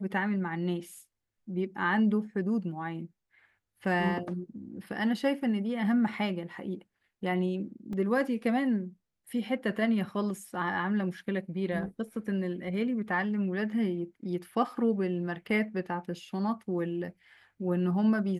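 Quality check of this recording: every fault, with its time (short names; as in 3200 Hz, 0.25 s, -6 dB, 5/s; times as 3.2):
7.93 gap 2.4 ms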